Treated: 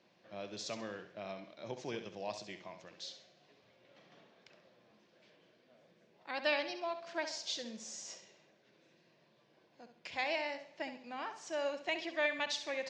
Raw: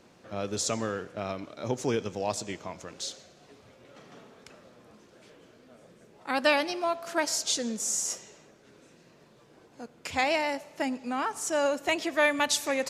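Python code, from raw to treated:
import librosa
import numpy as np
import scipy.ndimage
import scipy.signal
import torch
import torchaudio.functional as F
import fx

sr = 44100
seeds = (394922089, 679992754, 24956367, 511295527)

y = fx.cabinet(x, sr, low_hz=190.0, low_slope=12, high_hz=5100.0, hz=(260.0, 440.0, 840.0, 1300.0), db=(-10, -8, -4, -9))
y = fx.room_flutter(y, sr, wall_m=11.5, rt60_s=0.4)
y = F.gain(torch.from_numpy(y), -7.5).numpy()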